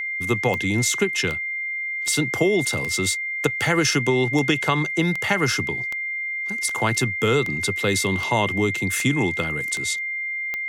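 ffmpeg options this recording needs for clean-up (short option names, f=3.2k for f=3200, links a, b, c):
-af "adeclick=t=4,bandreject=f=2.1k:w=30"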